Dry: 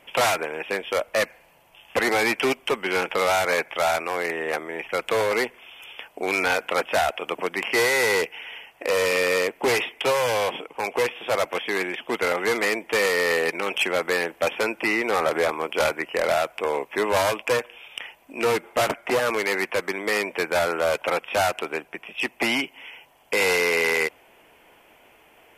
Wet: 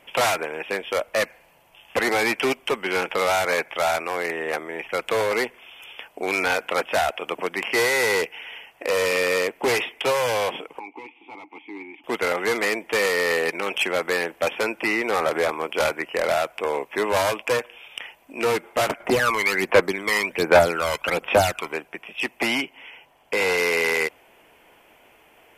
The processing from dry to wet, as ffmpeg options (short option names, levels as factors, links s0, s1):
-filter_complex "[0:a]asettb=1/sr,asplit=3[s0][s1][s2];[s0]atrim=end=10.794[s3];[s1]atrim=start=10.79:end=12.04,asetpts=PTS-STARTPTS,afade=t=in:d=0.004:c=qsin,afade=t=out:st=1.246:d=0.004:c=qsin,asplit=3[s4][s5][s6];[s4]bandpass=f=300:t=q:w=8,volume=1[s7];[s5]bandpass=f=870:t=q:w=8,volume=0.501[s8];[s6]bandpass=f=2240:t=q:w=8,volume=0.355[s9];[s7][s8][s9]amix=inputs=3:normalize=0[s10];[s2]atrim=start=12.036[s11];[s3][s10]acrossfade=d=0.004:c1=hsin:c2=qsin[s12];[s12][s11]acrossfade=d=0.004:c1=qsin:c2=hsin,asettb=1/sr,asplit=3[s13][s14][s15];[s13]atrim=end=19.004[s16];[s14]atrim=start=19:end=21.73,asetpts=PTS-STARTPTS,afade=t=in:d=0.004:c=qsin,afade=t=out:st=2.726:d=0.004:c=qsin,aphaser=in_gain=1:out_gain=1:delay=1:decay=0.69:speed=1.3:type=sinusoidal[s17];[s15]atrim=start=21.726[s18];[s16][s17]acrossfade=d=0.004:c1=hsin:c2=qsin[s19];[s19][s18]acrossfade=d=0.004:c1=qsin:c2=hsin,asettb=1/sr,asplit=3[s20][s21][s22];[s20]atrim=end=22.634[s23];[s21]atrim=start=22.63:end=23.58,asetpts=PTS-STARTPTS,afade=t=in:d=0.004:c=qsin,afade=t=out:st=0.946:d=0.004:c=qsin,highshelf=f=4900:g=-7[s24];[s22]atrim=start=23.576[s25];[s23][s24]acrossfade=d=0.004:c1=hsin:c2=qsin[s26];[s26][s25]acrossfade=d=0.004:c1=qsin:c2=hsin"